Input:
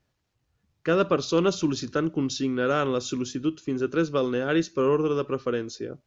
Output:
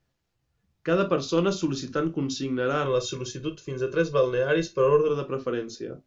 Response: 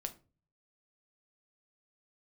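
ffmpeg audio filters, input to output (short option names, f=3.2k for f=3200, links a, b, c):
-filter_complex "[0:a]asettb=1/sr,asplit=3[a][b][c];[a]atrim=end=2.854[d];[b]atrim=start=2.85:end=5.08,asetpts=PTS-STARTPTS,afade=t=in:d=0.004:c=qsin,afade=t=out:st=2.226:d=0.004:c=qsin,aecho=1:1:1.9:0.78,atrim=end_sample=98343[e];[c]atrim=start=5.076[f];[d][e]acrossfade=d=0.004:c1=hsin:c2=qsin[g];[g][f]acrossfade=d=0.004:c1=qsin:c2=hsin[h];[1:a]atrim=start_sample=2205,atrim=end_sample=3087[i];[h][i]afir=irnorm=-1:irlink=0"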